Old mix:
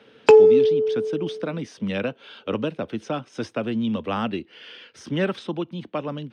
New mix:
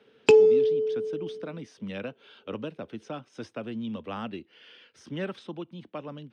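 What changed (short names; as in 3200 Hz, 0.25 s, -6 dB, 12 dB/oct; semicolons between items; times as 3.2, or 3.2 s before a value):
speech -9.5 dB; background: add band shelf 970 Hz -10.5 dB 2.3 oct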